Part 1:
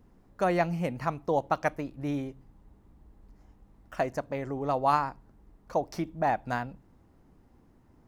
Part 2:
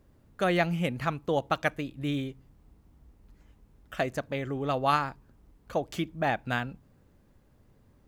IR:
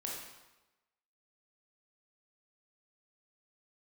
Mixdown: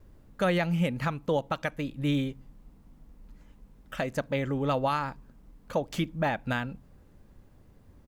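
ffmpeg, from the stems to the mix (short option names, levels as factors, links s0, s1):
-filter_complex "[0:a]aemphasis=mode=reproduction:type=bsi,volume=0.335[s0];[1:a]volume=-1,adelay=2.7,volume=1.33[s1];[s0][s1]amix=inputs=2:normalize=0,alimiter=limit=0.141:level=0:latency=1:release=221"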